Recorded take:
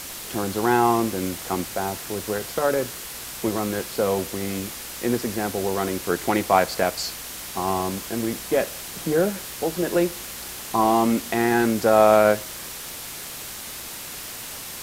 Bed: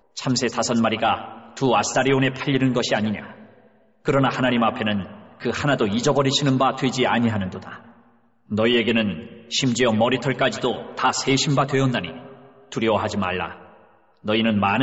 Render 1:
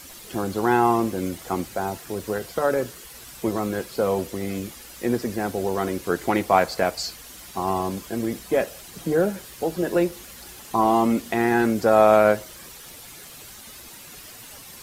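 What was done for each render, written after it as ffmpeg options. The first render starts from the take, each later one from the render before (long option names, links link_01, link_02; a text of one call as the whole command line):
ffmpeg -i in.wav -af "afftdn=noise_reduction=10:noise_floor=-36" out.wav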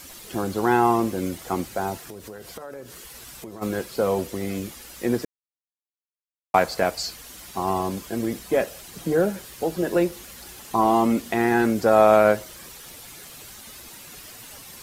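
ffmpeg -i in.wav -filter_complex "[0:a]asplit=3[link_01][link_02][link_03];[link_01]afade=type=out:start_time=2:duration=0.02[link_04];[link_02]acompressor=threshold=-36dB:ratio=5:attack=3.2:release=140:knee=1:detection=peak,afade=type=in:start_time=2:duration=0.02,afade=type=out:start_time=3.61:duration=0.02[link_05];[link_03]afade=type=in:start_time=3.61:duration=0.02[link_06];[link_04][link_05][link_06]amix=inputs=3:normalize=0,asplit=3[link_07][link_08][link_09];[link_07]atrim=end=5.25,asetpts=PTS-STARTPTS,afade=type=out:start_time=5.246:duration=0.004:curve=hsin[link_10];[link_08]atrim=start=5.25:end=6.54,asetpts=PTS-STARTPTS,volume=0[link_11];[link_09]atrim=start=6.54,asetpts=PTS-STARTPTS,afade=type=in:duration=0.004:curve=hsin[link_12];[link_10][link_11][link_12]concat=n=3:v=0:a=1" out.wav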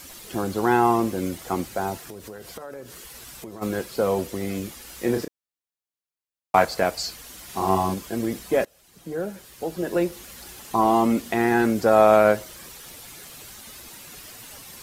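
ffmpeg -i in.wav -filter_complex "[0:a]asettb=1/sr,asplit=3[link_01][link_02][link_03];[link_01]atrim=end=4.834[link_04];[link_02]atrim=start=4.83:end=6.65,asetpts=PTS-STARTPTS,afade=type=in:duration=0.004:curve=qsin,afade=type=out:start_time=1.816:duration=0.004:curve=qsin,asplit=2[link_05][link_06];[link_06]adelay=31,volume=-6.5dB[link_07];[link_05][link_07]amix=inputs=2:normalize=0,atrim=end_sample=80262[link_08];[link_03]atrim=start=6.646[link_09];[link_04][link_08]acrossfade=duration=0.004:curve1=hsin:curve2=qsin[link_10];[link_10][link_09]acrossfade=duration=0.004:curve1=qsin:curve2=hsin,asettb=1/sr,asplit=3[link_11][link_12][link_13];[link_11]atrim=end=7.454[link_14];[link_12]atrim=start=7.45:end=7.94,asetpts=PTS-STARTPTS,afade=type=in:duration=0.004:curve=qsin,afade=type=out:start_time=0.486:duration=0.004:curve=qsin,asplit=2[link_15][link_16];[link_16]adelay=42,volume=-2dB[link_17];[link_15][link_17]amix=inputs=2:normalize=0,atrim=end_sample=21609[link_18];[link_13]atrim=start=7.936[link_19];[link_14][link_18]acrossfade=duration=0.004:curve1=hsin:curve2=qsin[link_20];[link_20][link_19]acrossfade=duration=0.004:curve1=qsin:curve2=hsin,asplit=2[link_21][link_22];[link_21]atrim=end=8.65,asetpts=PTS-STARTPTS,afade=type=out:start_time=8.646:duration=0.004:curve=hsin:silence=0.0841395[link_23];[link_22]atrim=start=8.65,asetpts=PTS-STARTPTS,afade=type=in:duration=1.72:silence=0.0841395[link_24];[link_23][link_24]concat=n=2:v=0:a=1" out.wav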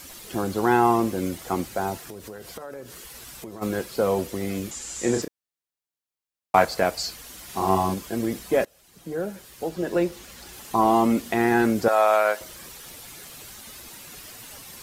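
ffmpeg -i in.wav -filter_complex "[0:a]asettb=1/sr,asplit=3[link_01][link_02][link_03];[link_01]atrim=end=4.714[link_04];[link_02]atrim=start=4.71:end=5.22,asetpts=PTS-STARTPTS,afade=type=in:duration=0.004:curve=qsin,afade=type=out:start_time=0.506:duration=0.004:curve=qsin,lowpass=frequency=7300:width_type=q:width=6.7[link_05];[link_03]atrim=start=5.216[link_06];[link_04][link_05]acrossfade=duration=0.004:curve1=hsin:curve2=qsin[link_07];[link_07][link_06]acrossfade=duration=0.004:curve1=qsin:curve2=hsin,asettb=1/sr,asplit=3[link_08][link_09][link_10];[link_08]atrim=end=9.694[link_11];[link_09]atrim=start=9.69:end=10.53,asetpts=PTS-STARTPTS,afade=type=in:duration=0.004:curve=qsin,afade=type=out:start_time=0.836:duration=0.004:curve=qsin,equalizer=frequency=12000:width_type=o:width=0.73:gain=-6.5[link_12];[link_10]atrim=start=10.526[link_13];[link_11][link_12]acrossfade=duration=0.004:curve1=hsin:curve2=qsin[link_14];[link_14][link_13]acrossfade=duration=0.004:curve1=qsin:curve2=hsin,asettb=1/sr,asplit=3[link_15][link_16][link_17];[link_15]atrim=end=11.884[link_18];[link_16]atrim=start=11.88:end=12.41,asetpts=PTS-STARTPTS,afade=type=in:duration=0.004:curve=qsin,afade=type=out:start_time=0.526:duration=0.004:curve=qsin,highpass=730[link_19];[link_17]atrim=start=12.406[link_20];[link_18][link_19]acrossfade=duration=0.004:curve1=hsin:curve2=qsin[link_21];[link_21][link_20]acrossfade=duration=0.004:curve1=qsin:curve2=hsin" out.wav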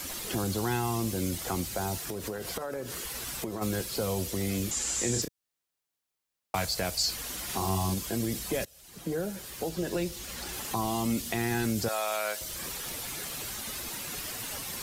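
ffmpeg -i in.wav -filter_complex "[0:a]acrossover=split=140|3000[link_01][link_02][link_03];[link_02]acompressor=threshold=-37dB:ratio=4[link_04];[link_01][link_04][link_03]amix=inputs=3:normalize=0,asplit=2[link_05][link_06];[link_06]alimiter=level_in=3.5dB:limit=-24dB:level=0:latency=1:release=33,volume=-3.5dB,volume=-2dB[link_07];[link_05][link_07]amix=inputs=2:normalize=0" out.wav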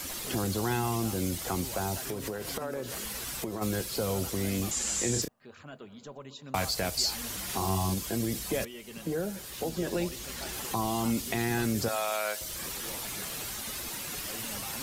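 ffmpeg -i in.wav -i bed.wav -filter_complex "[1:a]volume=-26.5dB[link_01];[0:a][link_01]amix=inputs=2:normalize=0" out.wav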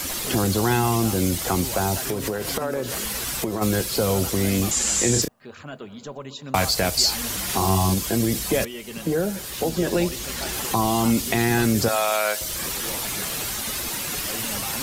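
ffmpeg -i in.wav -af "volume=9dB" out.wav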